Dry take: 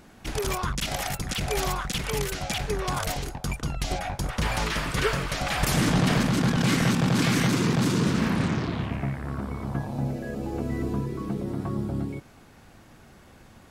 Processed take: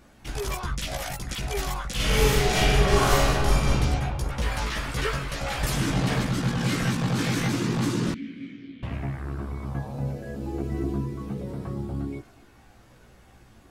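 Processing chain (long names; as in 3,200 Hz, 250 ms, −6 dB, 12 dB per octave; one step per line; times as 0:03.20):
multi-voice chorus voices 6, 0.17 Hz, delay 16 ms, depth 2 ms
0:01.95–0:03.72: thrown reverb, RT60 2.2 s, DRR −11 dB
0:08.14–0:08.83: formant filter i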